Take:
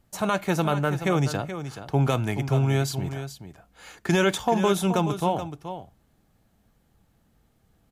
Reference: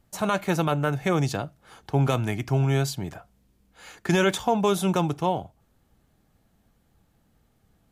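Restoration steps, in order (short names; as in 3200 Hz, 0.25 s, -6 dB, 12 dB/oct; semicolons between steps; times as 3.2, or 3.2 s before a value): inverse comb 0.427 s -10.5 dB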